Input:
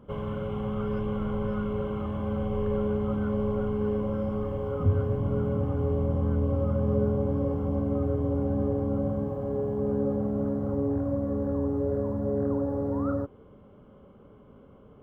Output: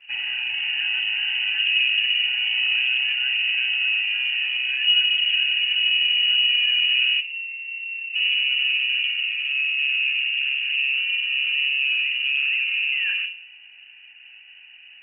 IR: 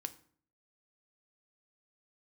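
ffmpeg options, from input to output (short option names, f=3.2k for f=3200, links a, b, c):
-filter_complex "[0:a]asettb=1/sr,asplit=3[a][b][c];[a]atrim=end=1.584[d];[b]atrim=start=1.58:end=2.26,asetpts=PTS-STARTPTS,afade=t=in:d=0.004:c=qsin,afade=t=out:st=0.676:d=0.004:c=qsin,equalizer=f=125:t=o:w=1:g=11,equalizer=f=500:t=o:w=1:g=6,equalizer=f=2k:t=o:w=1:g=-7[e];[c]atrim=start=2.256[f];[d][e]acrossfade=d=0.004:c1=hsin:c2=qsin[g];[g][f]acrossfade=d=0.004:c1=qsin:c2=hsin,acrossover=split=170|280|1600[h][i][j][k];[i]alimiter=level_in=10dB:limit=-24dB:level=0:latency=1:release=98,volume=-10dB[l];[h][l][j][k]amix=inputs=4:normalize=0,asoftclip=type=tanh:threshold=-17.5dB,asplit=3[m][n][o];[m]afade=t=out:st=7.19:d=0.02[p];[n]asplit=3[q][r][s];[q]bandpass=f=300:t=q:w=8,volume=0dB[t];[r]bandpass=f=870:t=q:w=8,volume=-6dB[u];[s]bandpass=f=2.24k:t=q:w=8,volume=-9dB[v];[t][u][v]amix=inputs=3:normalize=0,afade=t=in:st=7.19:d=0.02,afade=t=out:st=8.14:d=0.02[w];[o]afade=t=in:st=8.14:d=0.02[x];[p][w][x]amix=inputs=3:normalize=0[y];[1:a]atrim=start_sample=2205,asetrate=43218,aresample=44100[z];[y][z]afir=irnorm=-1:irlink=0,lowpass=f=2.6k:t=q:w=0.5098,lowpass=f=2.6k:t=q:w=0.6013,lowpass=f=2.6k:t=q:w=0.9,lowpass=f=2.6k:t=q:w=2.563,afreqshift=-3000,volume=8dB" -ar 48000 -c:a libopus -b:a 24k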